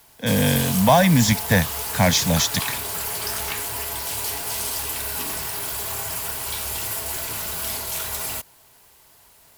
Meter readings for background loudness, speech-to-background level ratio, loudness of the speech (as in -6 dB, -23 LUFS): -25.5 LUFS, 6.0 dB, -19.5 LUFS